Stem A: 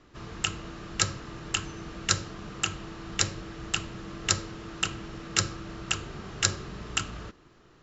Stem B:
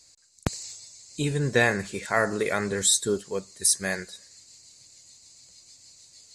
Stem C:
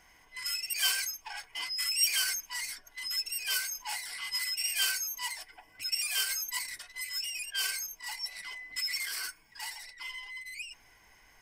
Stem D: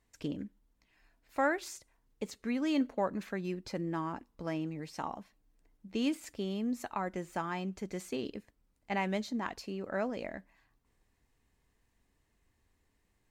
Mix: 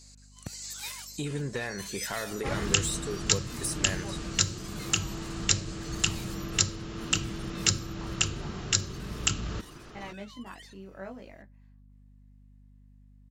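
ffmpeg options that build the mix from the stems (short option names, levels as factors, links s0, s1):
-filter_complex "[0:a]acrossover=split=340|3000[s0][s1][s2];[s1]acompressor=threshold=0.00158:ratio=1.5[s3];[s0][s3][s2]amix=inputs=3:normalize=0,adelay=2300,volume=1[s4];[1:a]acompressor=threshold=0.0282:ratio=6,asoftclip=type=tanh:threshold=0.0596,volume=1.12[s5];[2:a]aeval=exprs='val(0)*sin(2*PI*760*n/s+760*0.35/2.7*sin(2*PI*2.7*n/s))':c=same,volume=0.112[s6];[3:a]flanger=delay=17:depth=4.2:speed=0.36,adelay=1050,volume=0.15[s7];[s4][s6][s7]amix=inputs=3:normalize=0,dynaudnorm=f=230:g=5:m=3.55,alimiter=limit=0.531:level=0:latency=1:release=464,volume=1[s8];[s5][s8]amix=inputs=2:normalize=0,aeval=exprs='val(0)+0.002*(sin(2*PI*50*n/s)+sin(2*PI*2*50*n/s)/2+sin(2*PI*3*50*n/s)/3+sin(2*PI*4*50*n/s)/4+sin(2*PI*5*50*n/s)/5)':c=same"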